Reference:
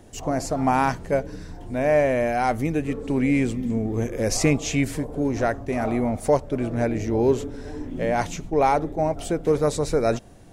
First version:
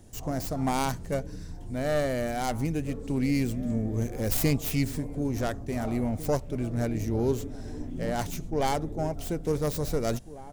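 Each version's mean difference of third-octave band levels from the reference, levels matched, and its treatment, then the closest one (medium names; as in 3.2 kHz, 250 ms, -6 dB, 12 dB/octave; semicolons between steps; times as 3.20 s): 4.5 dB: tracing distortion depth 0.32 ms; tone controls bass +8 dB, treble +9 dB; echo from a far wall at 300 m, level -16 dB; trim -9 dB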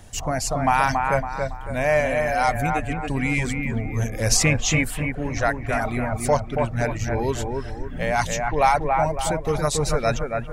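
5.5 dB: reverb removal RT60 1.9 s; peaking EQ 350 Hz -14.5 dB 1.7 oct; bucket-brigade echo 279 ms, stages 4096, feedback 40%, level -4 dB; trim +7.5 dB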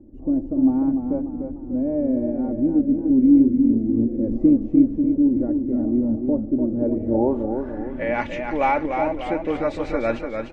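12.0 dB: comb 3.5 ms, depth 64%; low-pass sweep 310 Hz -> 2.4 kHz, 6.62–8.13 s; modulated delay 296 ms, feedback 49%, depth 75 cents, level -6 dB; trim -3.5 dB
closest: first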